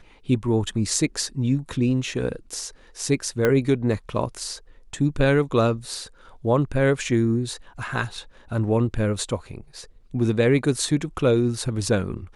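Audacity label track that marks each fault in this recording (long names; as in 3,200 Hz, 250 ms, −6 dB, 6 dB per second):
3.450000	3.450000	click −8 dBFS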